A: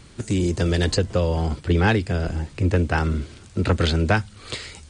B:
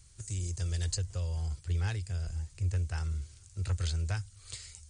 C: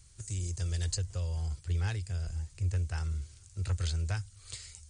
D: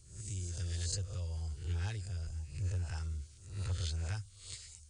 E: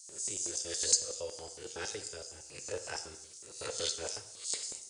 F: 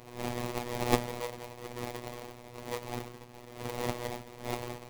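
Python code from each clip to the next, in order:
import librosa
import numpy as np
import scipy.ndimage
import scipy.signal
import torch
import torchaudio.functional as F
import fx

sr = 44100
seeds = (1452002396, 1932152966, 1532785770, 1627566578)

y1 = fx.curve_eq(x, sr, hz=(100.0, 240.0, 360.0, 3600.0, 6500.0), db=(0, -23, -18, -8, 5))
y1 = F.gain(torch.from_numpy(y1), -8.5).numpy()
y2 = y1
y3 = fx.spec_swells(y2, sr, rise_s=0.57)
y3 = fx.filter_lfo_notch(y3, sr, shape='sine', hz=9.2, low_hz=610.0, high_hz=2200.0, q=1.6)
y3 = F.gain(torch.from_numpy(y3), -5.5).numpy()
y4 = fx.filter_lfo_highpass(y3, sr, shape='square', hz=5.4, low_hz=440.0, high_hz=5800.0, q=2.5)
y4 = fx.rev_gated(y4, sr, seeds[0], gate_ms=290, shape='falling', drr_db=8.0)
y4 = F.gain(torch.from_numpy(y4), 8.0).numpy()
y5 = fx.sample_hold(y4, sr, seeds[1], rate_hz=1500.0, jitter_pct=20)
y5 = fx.robotise(y5, sr, hz=121.0)
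y5 = F.gain(torch.from_numpy(y5), 4.0).numpy()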